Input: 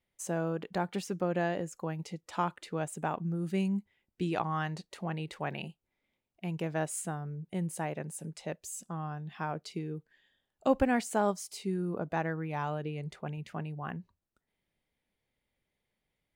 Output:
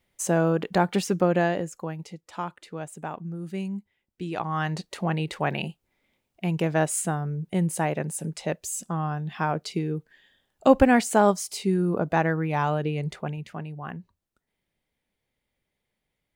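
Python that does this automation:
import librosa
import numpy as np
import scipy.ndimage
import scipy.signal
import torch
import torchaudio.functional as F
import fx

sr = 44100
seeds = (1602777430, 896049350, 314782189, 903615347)

y = fx.gain(x, sr, db=fx.line((1.19, 10.5), (2.25, -1.0), (4.24, -1.0), (4.79, 9.5), (13.12, 9.5), (13.55, 2.5)))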